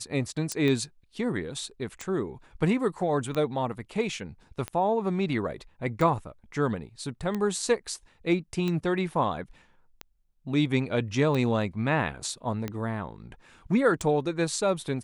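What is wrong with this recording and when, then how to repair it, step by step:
tick 45 rpm -18 dBFS
0.52 s: pop -15 dBFS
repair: de-click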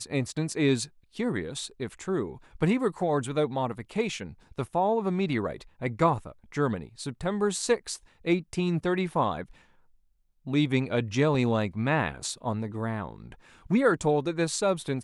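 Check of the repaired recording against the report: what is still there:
nothing left

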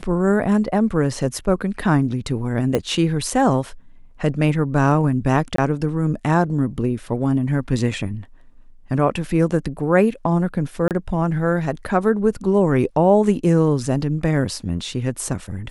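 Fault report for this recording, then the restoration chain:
2.75 s: pop -7 dBFS
5.56–5.58 s: dropout 23 ms
10.88–10.91 s: dropout 28 ms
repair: de-click; interpolate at 5.56 s, 23 ms; interpolate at 10.88 s, 28 ms

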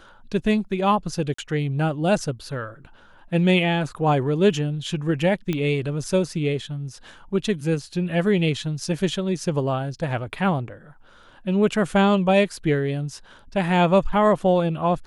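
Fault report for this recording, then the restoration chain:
1.34–1.38 s: dropout 44 ms
5.53 s: pop -13 dBFS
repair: de-click; interpolate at 1.34 s, 44 ms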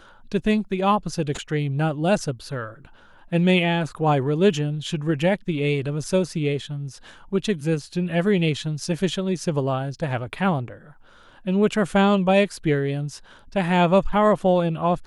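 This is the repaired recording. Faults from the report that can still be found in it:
nothing left

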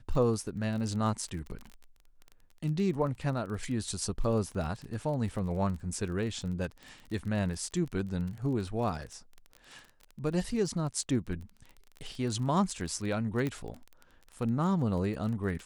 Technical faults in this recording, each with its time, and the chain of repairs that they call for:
crackle 29 per s -37 dBFS
13.47 s: pop -20 dBFS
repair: de-click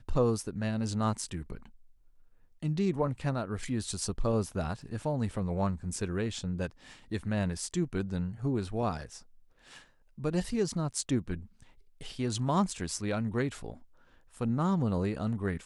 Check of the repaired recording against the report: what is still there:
nothing left

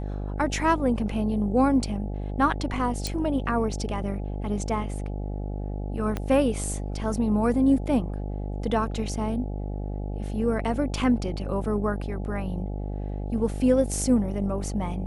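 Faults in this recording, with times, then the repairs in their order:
buzz 50 Hz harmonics 17 -31 dBFS
3.07 s: pop
6.17 s: pop -15 dBFS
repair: de-click; de-hum 50 Hz, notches 17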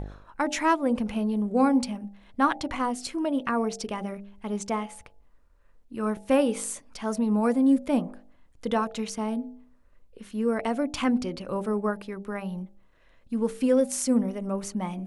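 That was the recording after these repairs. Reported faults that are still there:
6.17 s: pop

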